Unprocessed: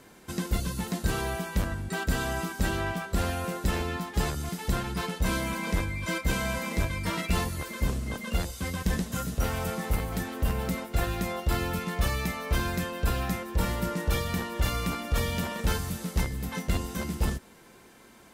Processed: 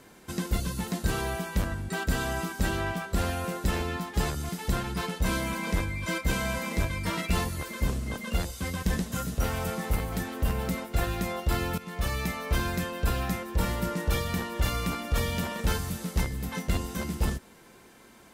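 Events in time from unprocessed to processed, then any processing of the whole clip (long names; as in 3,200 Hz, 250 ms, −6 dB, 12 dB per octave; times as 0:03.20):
0:11.78–0:12.35: fade in equal-power, from −13 dB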